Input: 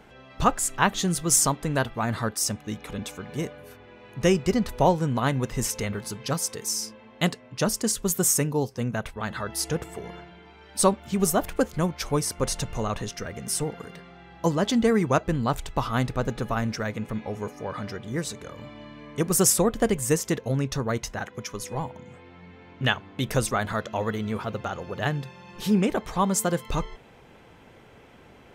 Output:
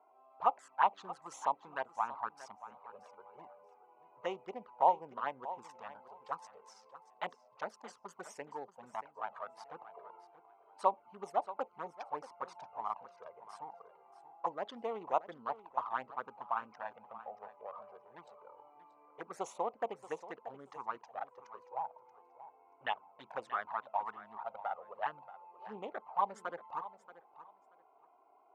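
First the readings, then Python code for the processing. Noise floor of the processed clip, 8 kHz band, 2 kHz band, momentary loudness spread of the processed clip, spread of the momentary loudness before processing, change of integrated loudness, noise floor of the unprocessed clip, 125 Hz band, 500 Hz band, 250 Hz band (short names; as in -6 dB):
-66 dBFS, -34.5 dB, -14.5 dB, 22 LU, 13 LU, -13.5 dB, -51 dBFS, -37.0 dB, -15.0 dB, -28.5 dB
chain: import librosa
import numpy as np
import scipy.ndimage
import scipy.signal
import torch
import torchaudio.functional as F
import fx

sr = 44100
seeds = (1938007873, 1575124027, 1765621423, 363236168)

p1 = fx.wiener(x, sr, points=25)
p2 = fx.env_flanger(p1, sr, rest_ms=3.0, full_db=-18.0)
p3 = fx.ladder_bandpass(p2, sr, hz=1000.0, resonance_pct=55)
p4 = p3 + fx.echo_feedback(p3, sr, ms=631, feedback_pct=18, wet_db=-15, dry=0)
y = F.gain(torch.from_numpy(p4), 6.0).numpy()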